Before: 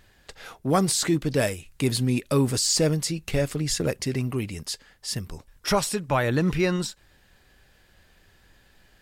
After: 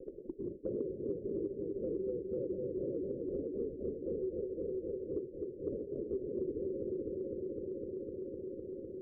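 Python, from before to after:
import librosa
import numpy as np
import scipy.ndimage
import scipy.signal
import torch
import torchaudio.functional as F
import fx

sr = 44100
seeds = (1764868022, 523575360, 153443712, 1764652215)

p1 = np.where(x < 0.0, 10.0 ** (-3.0 / 20.0) * x, x)
p2 = scipy.signal.sosfilt(scipy.signal.butter(2, 80.0, 'highpass', fs=sr, output='sos'), p1)
p3 = fx.spec_gate(p2, sr, threshold_db=-15, keep='weak')
p4 = scipy.signal.sosfilt(scipy.signal.butter(16, 540.0, 'lowpass', fs=sr, output='sos'), p3)
p5 = fx.peak_eq(p4, sr, hz=380.0, db=12.5, octaves=0.47)
p6 = p5 + fx.echo_heads(p5, sr, ms=253, heads='first and second', feedback_pct=50, wet_db=-6.5, dry=0)
p7 = fx.band_squash(p6, sr, depth_pct=100)
y = p7 * librosa.db_to_amplitude(1.5)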